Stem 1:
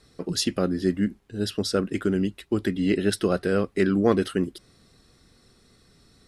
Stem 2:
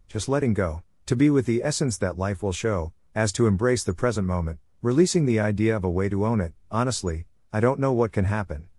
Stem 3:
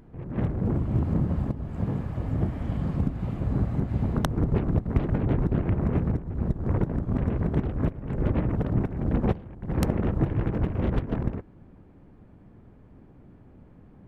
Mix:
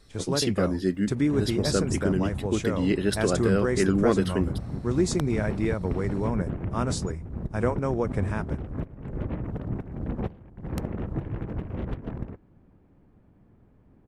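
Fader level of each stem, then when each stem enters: -2.0 dB, -5.0 dB, -6.5 dB; 0.00 s, 0.00 s, 0.95 s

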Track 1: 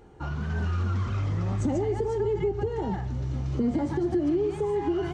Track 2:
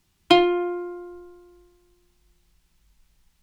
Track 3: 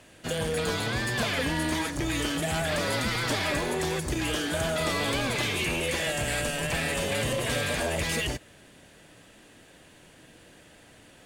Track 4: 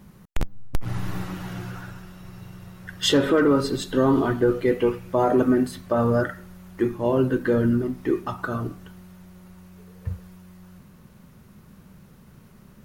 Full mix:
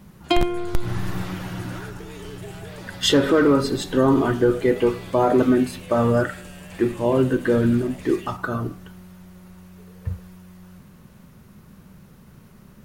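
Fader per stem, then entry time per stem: -15.0 dB, -4.5 dB, -14.5 dB, +2.0 dB; 0.00 s, 0.00 s, 0.00 s, 0.00 s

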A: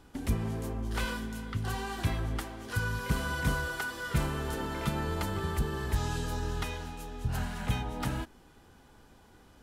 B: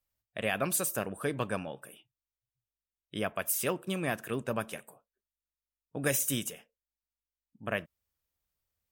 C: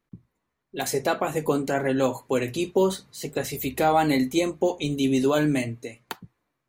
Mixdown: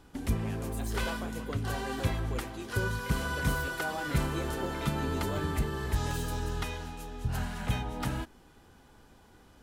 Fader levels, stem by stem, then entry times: 0.0 dB, -17.5 dB, -17.0 dB; 0.00 s, 0.00 s, 0.00 s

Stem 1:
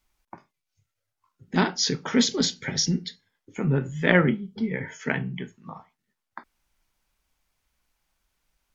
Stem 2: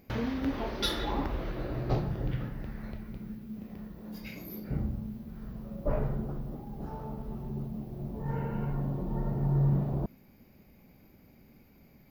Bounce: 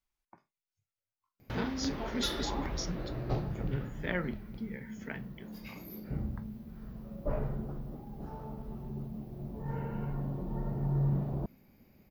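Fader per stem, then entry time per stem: -15.0 dB, -3.5 dB; 0.00 s, 1.40 s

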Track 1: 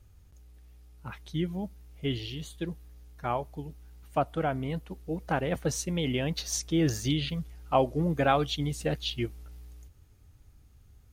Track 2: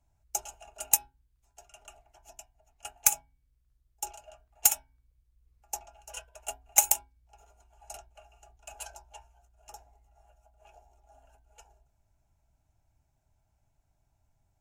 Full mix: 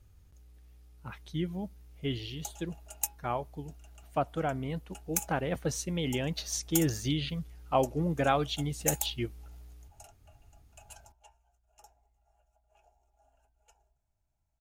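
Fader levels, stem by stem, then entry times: -2.5 dB, -9.0 dB; 0.00 s, 2.10 s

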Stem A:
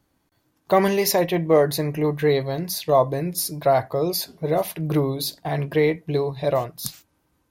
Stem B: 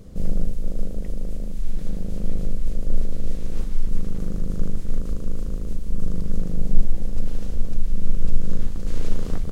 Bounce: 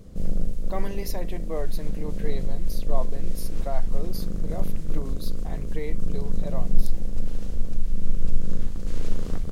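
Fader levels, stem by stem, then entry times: -15.5 dB, -2.5 dB; 0.00 s, 0.00 s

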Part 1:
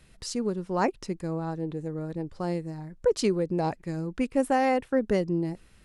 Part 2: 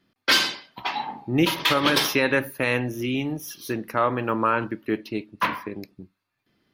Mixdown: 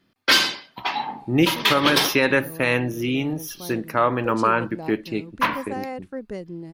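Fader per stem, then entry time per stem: -8.0 dB, +2.5 dB; 1.20 s, 0.00 s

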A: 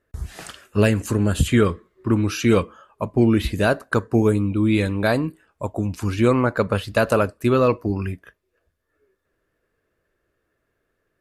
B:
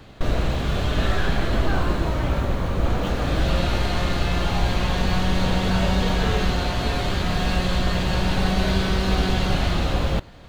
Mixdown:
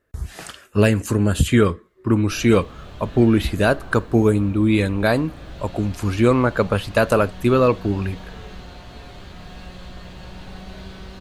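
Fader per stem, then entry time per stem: +1.5 dB, -16.0 dB; 0.00 s, 2.10 s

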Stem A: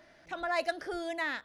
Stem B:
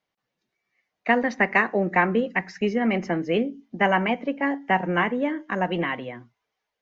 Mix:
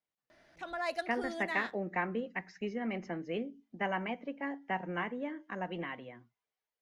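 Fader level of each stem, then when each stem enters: -4.5 dB, -13.5 dB; 0.30 s, 0.00 s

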